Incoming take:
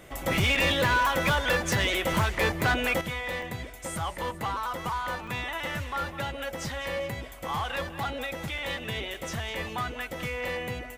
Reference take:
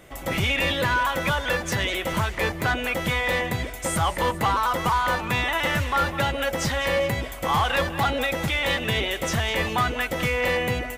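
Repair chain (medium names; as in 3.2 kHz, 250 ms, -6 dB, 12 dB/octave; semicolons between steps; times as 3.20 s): clip repair -19 dBFS; interpolate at 0.55/3.42/5.27/8.58/9.14 s, 3.3 ms; trim 0 dB, from 3.01 s +9 dB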